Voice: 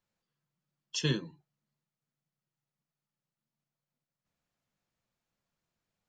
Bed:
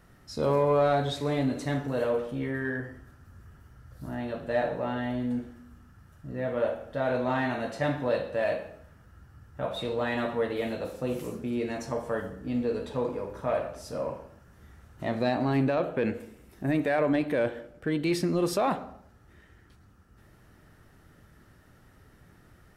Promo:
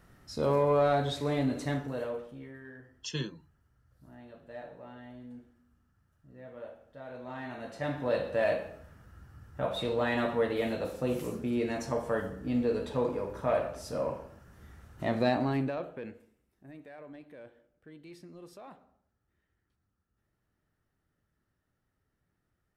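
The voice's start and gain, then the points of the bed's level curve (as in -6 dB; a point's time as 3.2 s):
2.10 s, -5.0 dB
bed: 1.69 s -2 dB
2.61 s -17 dB
7.1 s -17 dB
8.27 s 0 dB
15.32 s 0 dB
16.49 s -23 dB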